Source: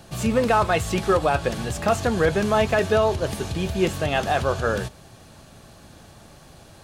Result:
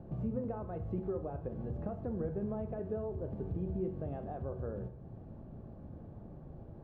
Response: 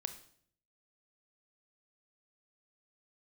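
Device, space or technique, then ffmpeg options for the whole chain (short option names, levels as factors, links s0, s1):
television next door: -filter_complex "[0:a]acompressor=threshold=0.0141:ratio=3,lowpass=460[s0];[1:a]atrim=start_sample=2205[s1];[s0][s1]afir=irnorm=-1:irlink=0,volume=1.19"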